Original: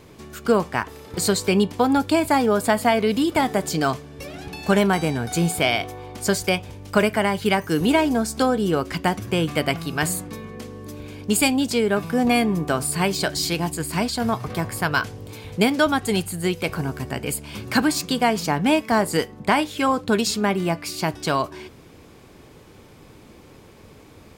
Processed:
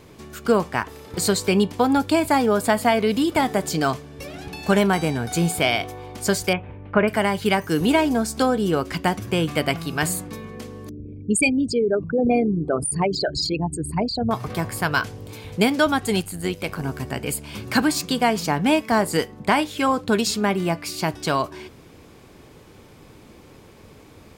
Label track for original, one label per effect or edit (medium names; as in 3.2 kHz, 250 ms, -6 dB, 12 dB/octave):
6.530000	7.080000	inverse Chebyshev low-pass stop band from 6 kHz, stop band 50 dB
10.890000	14.310000	resonances exaggerated exponent 3
16.210000	16.840000	AM modulator 97 Hz, depth 45%